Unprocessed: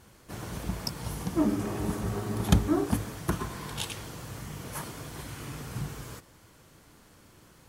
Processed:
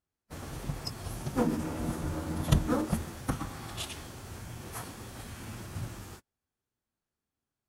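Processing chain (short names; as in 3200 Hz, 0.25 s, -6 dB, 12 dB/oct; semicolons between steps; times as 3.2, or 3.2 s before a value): gate -42 dBFS, range -31 dB; formant-preserving pitch shift -4.5 st; gain -2 dB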